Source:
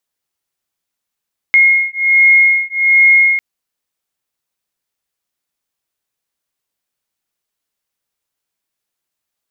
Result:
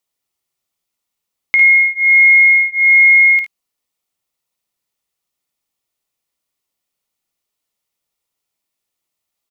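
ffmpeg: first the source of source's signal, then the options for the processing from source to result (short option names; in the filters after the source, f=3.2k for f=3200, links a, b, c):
-f lavfi -i "aevalsrc='0.299*(sin(2*PI*2150*t)+sin(2*PI*2151.3*t))':d=1.85:s=44100"
-af "bandreject=f=1.6k:w=5.7,acompressor=threshold=-10dB:ratio=6,aecho=1:1:54|73:0.447|0.224"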